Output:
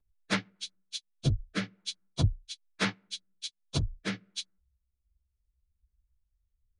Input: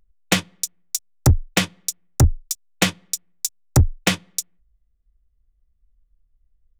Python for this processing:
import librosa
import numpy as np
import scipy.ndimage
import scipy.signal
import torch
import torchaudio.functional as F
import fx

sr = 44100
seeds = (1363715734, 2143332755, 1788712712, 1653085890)

y = fx.partial_stretch(x, sr, pct=83)
y = fx.rotary_switch(y, sr, hz=8.0, then_hz=1.2, switch_at_s=0.72)
y = y * librosa.db_to_amplitude(-7.5)